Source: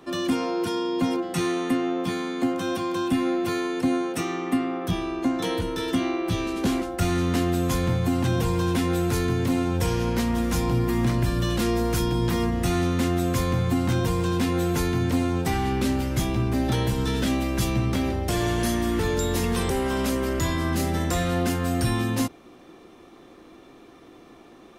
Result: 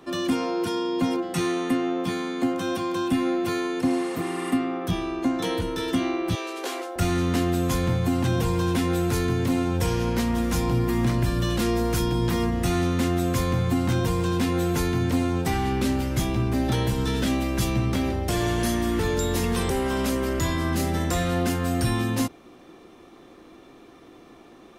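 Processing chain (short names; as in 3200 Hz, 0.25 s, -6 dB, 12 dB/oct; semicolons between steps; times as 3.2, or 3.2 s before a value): 3.87–4.49 spectral repair 810–12000 Hz both; 6.35–6.96 steep high-pass 380 Hz 36 dB/oct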